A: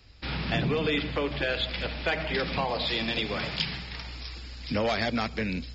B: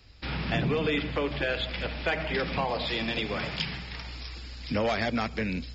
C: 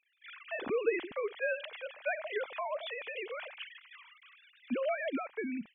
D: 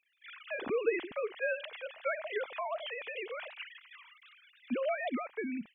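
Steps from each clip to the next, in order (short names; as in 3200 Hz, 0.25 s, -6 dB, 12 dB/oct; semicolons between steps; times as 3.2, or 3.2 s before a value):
dynamic EQ 4200 Hz, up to -5 dB, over -44 dBFS, Q 2
sine-wave speech; gain -7 dB
record warp 78 rpm, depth 160 cents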